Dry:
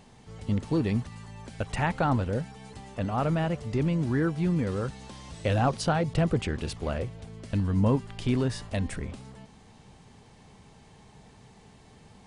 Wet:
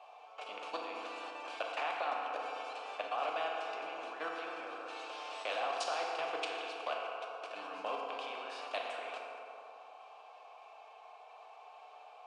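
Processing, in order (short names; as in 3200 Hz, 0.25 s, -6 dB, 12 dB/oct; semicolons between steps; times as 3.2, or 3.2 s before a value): HPF 570 Hz 24 dB/oct; high shelf 8800 Hz -8 dB; level quantiser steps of 18 dB; vowel filter a; FDN reverb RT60 2 s, low-frequency decay 1.2×, high-frequency decay 0.65×, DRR 0.5 dB; spectral compressor 2:1; gain +6.5 dB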